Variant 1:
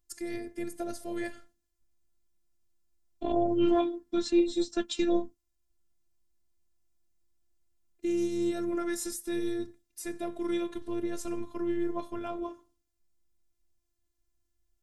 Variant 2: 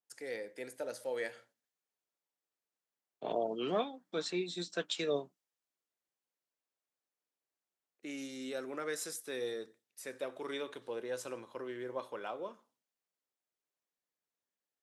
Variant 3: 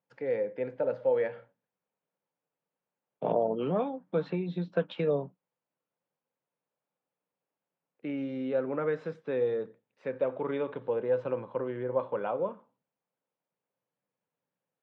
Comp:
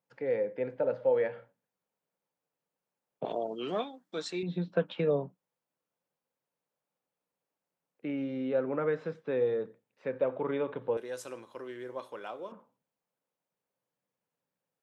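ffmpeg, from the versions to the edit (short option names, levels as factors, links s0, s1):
-filter_complex "[1:a]asplit=2[s0][s1];[2:a]asplit=3[s2][s3][s4];[s2]atrim=end=3.252[s5];[s0]atrim=start=3.248:end=4.432[s6];[s3]atrim=start=4.428:end=10.972[s7];[s1]atrim=start=10.968:end=12.522[s8];[s4]atrim=start=12.518[s9];[s5][s6]acrossfade=d=0.004:c1=hsin:c2=hsin[s10];[s10][s7]acrossfade=d=0.004:c1=hsin:c2=hsin[s11];[s11][s8]acrossfade=d=0.004:c1=hsin:c2=hsin[s12];[s12][s9]acrossfade=d=0.004:c1=hsin:c2=hsin"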